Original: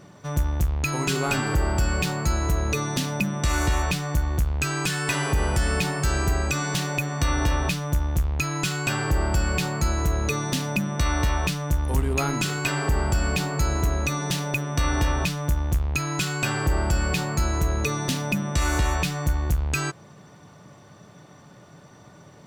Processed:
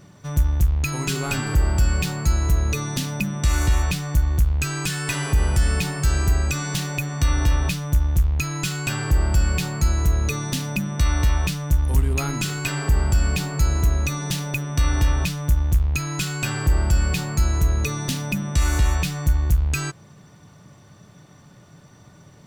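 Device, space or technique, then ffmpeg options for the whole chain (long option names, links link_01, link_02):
smiley-face EQ: -af "lowshelf=frequency=110:gain=7,equalizer=frequency=630:width_type=o:width=2.5:gain=-4.5,highshelf=frequency=9200:gain=4"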